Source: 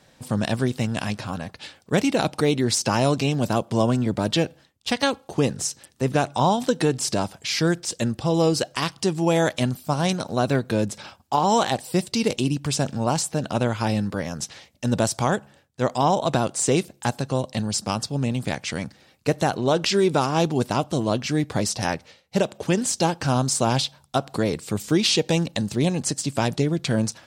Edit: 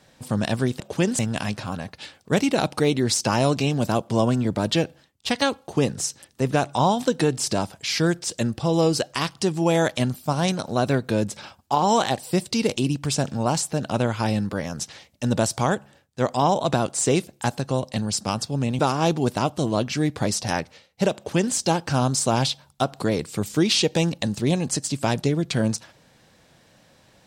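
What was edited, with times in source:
18.40–20.13 s: delete
22.50–22.89 s: copy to 0.80 s

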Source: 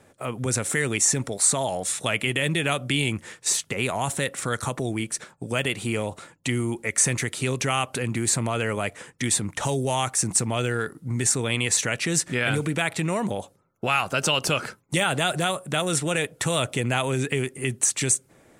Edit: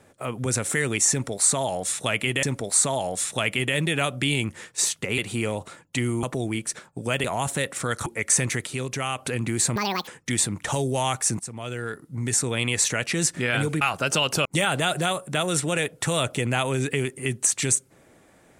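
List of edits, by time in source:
1.11–2.43 s: loop, 2 plays
3.86–4.68 s: swap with 5.69–6.74 s
7.35–7.86 s: gain -4 dB
8.44–9.00 s: speed 179%
10.32–11.78 s: fade in equal-power, from -15.5 dB
12.74–13.93 s: delete
14.57–14.84 s: delete

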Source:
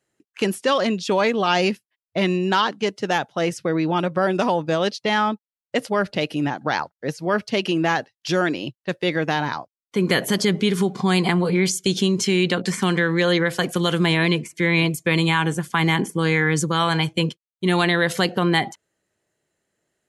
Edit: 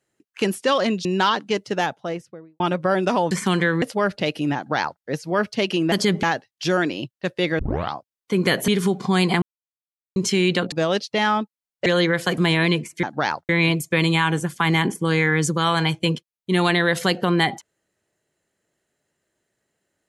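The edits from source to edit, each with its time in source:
1.05–2.37 s: delete
2.99–3.92 s: studio fade out
4.63–5.77 s: swap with 12.67–13.18 s
6.51–6.97 s: copy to 14.63 s
9.23 s: tape start 0.35 s
10.32–10.63 s: move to 7.87 s
11.37–12.11 s: mute
13.70–13.98 s: delete

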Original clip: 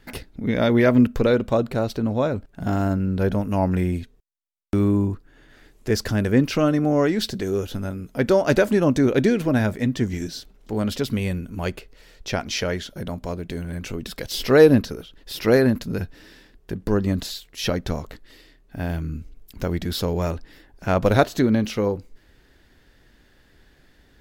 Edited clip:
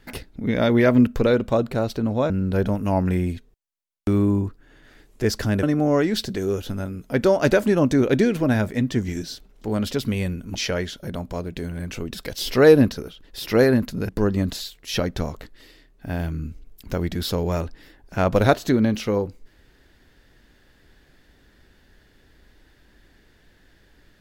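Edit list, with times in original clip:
2.30–2.96 s: delete
6.29–6.68 s: delete
11.60–12.48 s: delete
16.02–16.79 s: delete

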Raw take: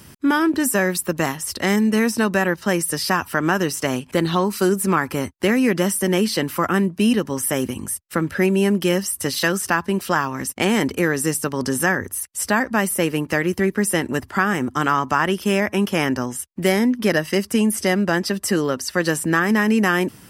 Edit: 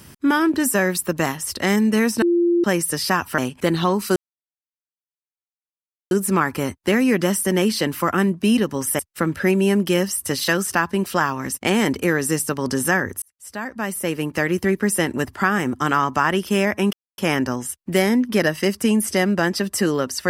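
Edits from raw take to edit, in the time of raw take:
2.22–2.64 s: bleep 345 Hz -14 dBFS
3.38–3.89 s: delete
4.67 s: insert silence 1.95 s
7.55–7.94 s: delete
12.17–13.47 s: fade in
15.88 s: insert silence 0.25 s

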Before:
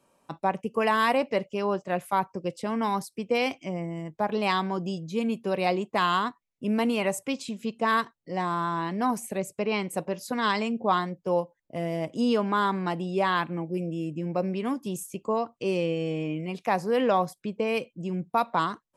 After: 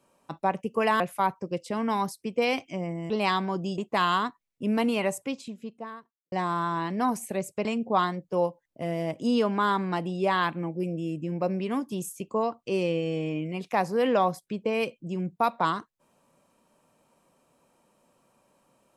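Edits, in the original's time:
1.00–1.93 s: delete
4.03–4.32 s: delete
5.00–5.79 s: delete
6.91–8.33 s: studio fade out
9.66–10.59 s: delete

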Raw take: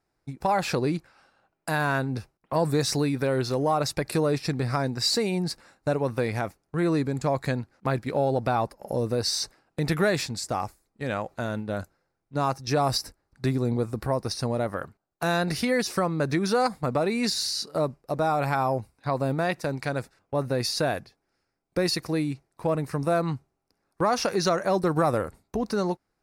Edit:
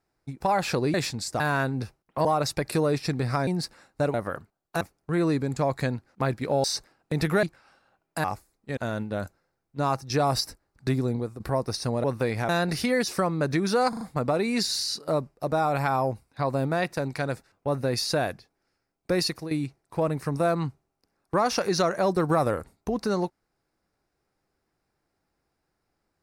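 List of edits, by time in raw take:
0.94–1.75 s: swap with 10.10–10.56 s
2.60–3.65 s: delete
4.87–5.34 s: delete
6.01–6.46 s: swap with 14.61–15.28 s
8.29–9.31 s: delete
11.09–11.34 s: delete
13.59–13.97 s: fade out, to -11 dB
16.68 s: stutter 0.04 s, 4 plays
21.93–22.18 s: fade out, to -12 dB

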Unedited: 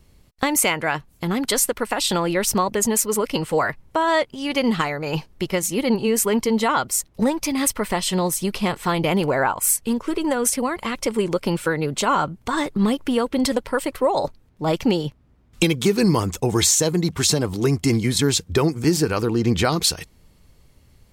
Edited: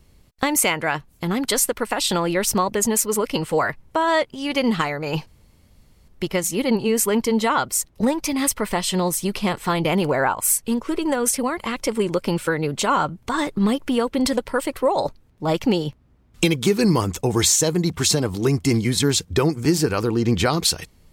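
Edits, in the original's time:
5.27 s: insert room tone 0.81 s

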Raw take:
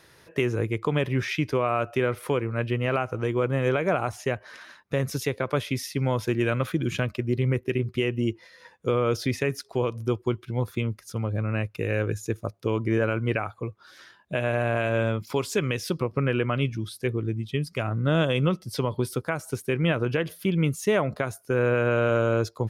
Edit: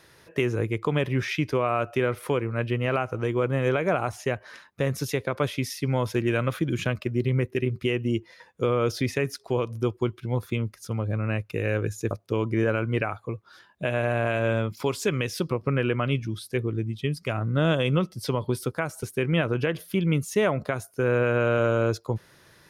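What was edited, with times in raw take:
shrink pauses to 55%

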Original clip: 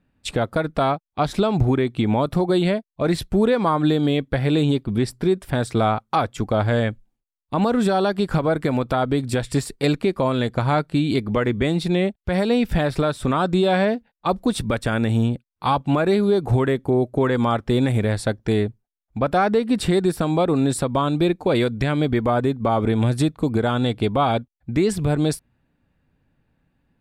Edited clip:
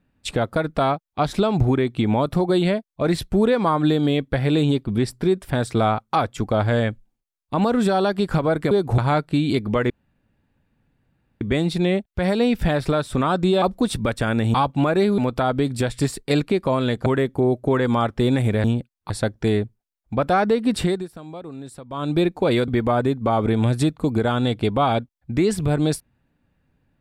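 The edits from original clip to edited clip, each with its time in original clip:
8.71–10.59 s: swap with 16.29–16.56 s
11.51 s: insert room tone 1.51 s
13.72–14.27 s: delete
15.19–15.65 s: move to 18.14 s
19.86–21.19 s: dip -16.5 dB, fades 0.25 s
21.72–22.07 s: delete

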